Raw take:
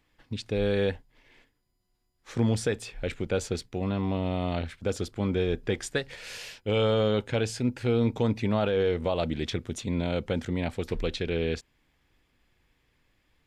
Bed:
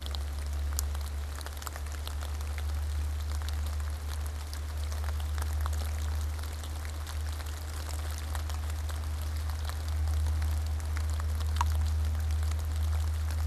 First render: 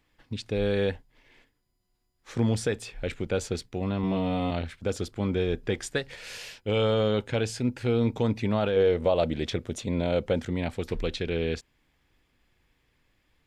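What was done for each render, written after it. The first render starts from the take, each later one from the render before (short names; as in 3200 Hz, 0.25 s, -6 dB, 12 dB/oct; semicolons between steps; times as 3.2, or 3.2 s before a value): 4.02–4.51 doubler 15 ms -2 dB; 8.76–10.39 bell 560 Hz +6 dB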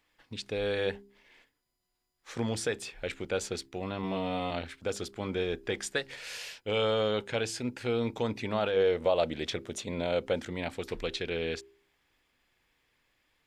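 low shelf 300 Hz -11.5 dB; de-hum 66.92 Hz, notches 6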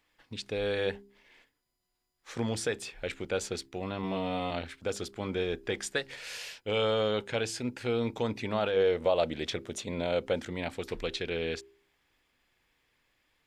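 nothing audible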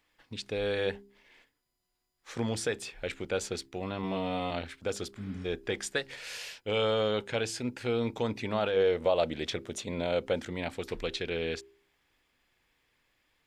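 5.19–5.43 spectral repair 280–5300 Hz before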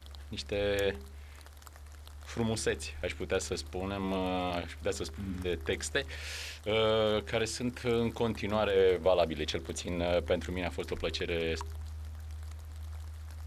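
add bed -12.5 dB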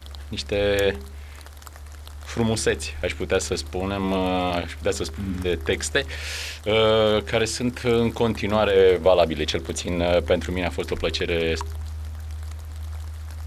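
gain +9.5 dB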